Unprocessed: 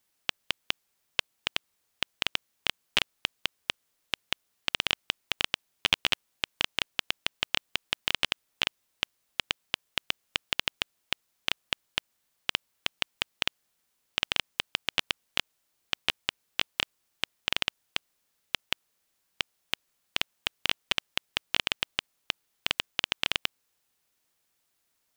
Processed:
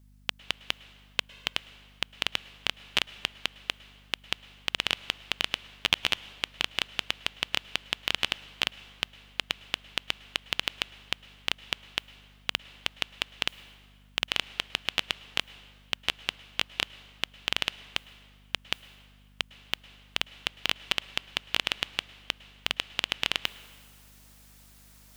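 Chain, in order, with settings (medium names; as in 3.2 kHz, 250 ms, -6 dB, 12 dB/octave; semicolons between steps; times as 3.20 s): reverse; upward compressor, threshold -41 dBFS; reverse; hum 50 Hz, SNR 22 dB; plate-style reverb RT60 1.9 s, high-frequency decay 0.75×, pre-delay 95 ms, DRR 17.5 dB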